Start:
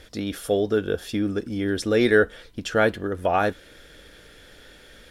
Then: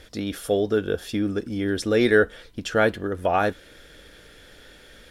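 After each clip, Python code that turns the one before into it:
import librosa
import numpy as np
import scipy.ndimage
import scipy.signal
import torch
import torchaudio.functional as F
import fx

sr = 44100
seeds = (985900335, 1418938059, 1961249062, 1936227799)

y = x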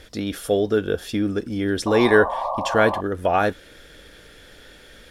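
y = fx.spec_paint(x, sr, seeds[0], shape='noise', start_s=1.86, length_s=1.15, low_hz=520.0, high_hz=1200.0, level_db=-28.0)
y = y * 10.0 ** (2.0 / 20.0)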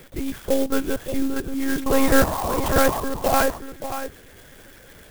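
y = x + 10.0 ** (-9.5 / 20.0) * np.pad(x, (int(577 * sr / 1000.0), 0))[:len(x)]
y = fx.lpc_monotone(y, sr, seeds[1], pitch_hz=270.0, order=10)
y = fx.clock_jitter(y, sr, seeds[2], jitter_ms=0.062)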